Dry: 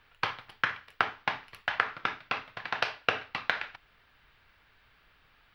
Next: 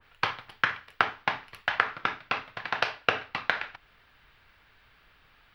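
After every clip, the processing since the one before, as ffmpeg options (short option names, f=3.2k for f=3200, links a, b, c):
-af "adynamicequalizer=threshold=0.00631:dfrequency=2000:dqfactor=0.7:tfrequency=2000:tqfactor=0.7:attack=5:release=100:ratio=0.375:range=1.5:mode=cutabove:tftype=highshelf,volume=3dB"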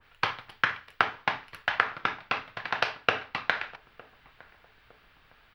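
-filter_complex "[0:a]asplit=2[a][b];[b]adelay=909,lowpass=f=890:p=1,volume=-20.5dB,asplit=2[c][d];[d]adelay=909,lowpass=f=890:p=1,volume=0.5,asplit=2[e][f];[f]adelay=909,lowpass=f=890:p=1,volume=0.5,asplit=2[g][h];[h]adelay=909,lowpass=f=890:p=1,volume=0.5[i];[a][c][e][g][i]amix=inputs=5:normalize=0"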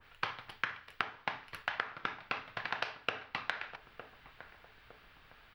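-af "acompressor=threshold=-35dB:ratio=3"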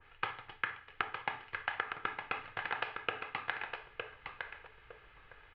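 -filter_complex "[0:a]lowpass=f=3.1k:w=0.5412,lowpass=f=3.1k:w=1.3066,aecho=1:1:2.4:0.41,asplit=2[a][b];[b]aecho=0:1:911:0.473[c];[a][c]amix=inputs=2:normalize=0,volume=-1dB"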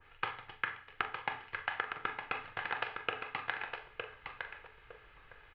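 -filter_complex "[0:a]asplit=2[a][b];[b]adelay=42,volume=-12dB[c];[a][c]amix=inputs=2:normalize=0"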